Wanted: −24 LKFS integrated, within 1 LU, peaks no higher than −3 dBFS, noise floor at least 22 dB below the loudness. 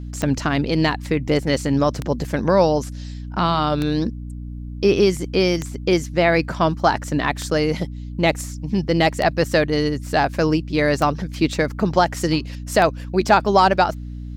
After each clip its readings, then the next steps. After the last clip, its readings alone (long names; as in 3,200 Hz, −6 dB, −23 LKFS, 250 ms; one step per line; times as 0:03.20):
number of clicks 8; mains hum 60 Hz; hum harmonics up to 300 Hz; level of the hum −29 dBFS; integrated loudness −20.0 LKFS; sample peak −2.5 dBFS; target loudness −24.0 LKFS
→ click removal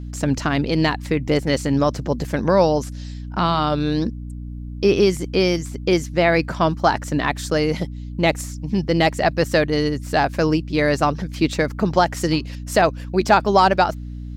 number of clicks 0; mains hum 60 Hz; hum harmonics up to 300 Hz; level of the hum −29 dBFS
→ mains-hum notches 60/120/180/240/300 Hz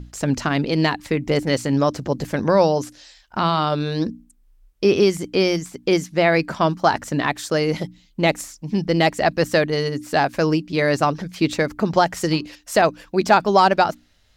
mains hum none found; integrated loudness −20.5 LKFS; sample peak −3.0 dBFS; target loudness −24.0 LKFS
→ level −3.5 dB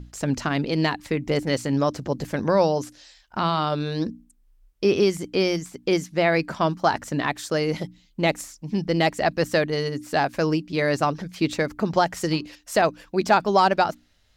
integrated loudness −24.0 LKFS; sample peak −6.5 dBFS; background noise floor −60 dBFS